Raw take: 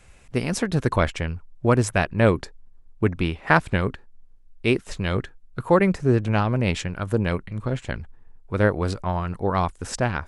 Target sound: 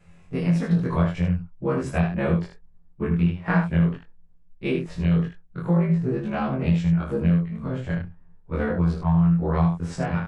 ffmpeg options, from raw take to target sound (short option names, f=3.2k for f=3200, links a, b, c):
-af "afftfilt=real='re':imag='-im':win_size=2048:overlap=0.75,lowpass=f=2.4k:p=1,equalizer=f=170:t=o:w=0.33:g=14,acompressor=threshold=-21dB:ratio=6,aecho=1:1:11|36|77:0.596|0.376|0.501"